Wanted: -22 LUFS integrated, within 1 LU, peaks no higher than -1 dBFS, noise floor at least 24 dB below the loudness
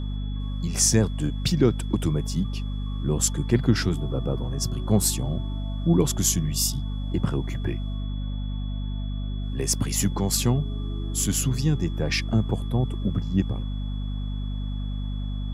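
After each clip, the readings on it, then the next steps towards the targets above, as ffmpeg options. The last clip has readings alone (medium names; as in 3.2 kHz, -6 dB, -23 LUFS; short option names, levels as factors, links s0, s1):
hum 50 Hz; highest harmonic 250 Hz; hum level -26 dBFS; steady tone 3.4 kHz; tone level -47 dBFS; loudness -26.0 LUFS; peak level -7.0 dBFS; loudness target -22.0 LUFS
-> -af "bandreject=f=50:t=h:w=6,bandreject=f=100:t=h:w=6,bandreject=f=150:t=h:w=6,bandreject=f=200:t=h:w=6,bandreject=f=250:t=h:w=6"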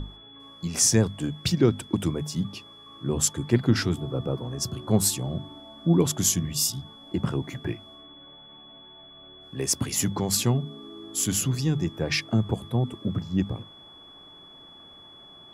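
hum not found; steady tone 3.4 kHz; tone level -47 dBFS
-> -af "bandreject=f=3400:w=30"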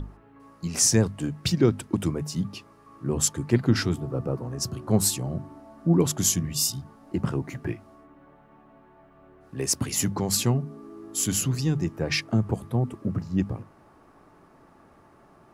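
steady tone not found; loudness -26.0 LUFS; peak level -8.0 dBFS; loudness target -22.0 LUFS
-> -af "volume=1.58"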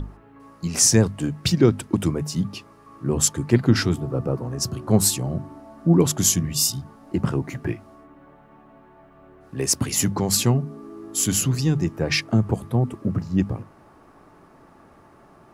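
loudness -22.0 LUFS; peak level -4.0 dBFS; noise floor -52 dBFS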